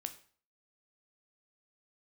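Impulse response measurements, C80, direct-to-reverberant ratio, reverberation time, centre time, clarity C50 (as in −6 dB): 17.5 dB, 8.0 dB, 0.45 s, 7 ms, 13.5 dB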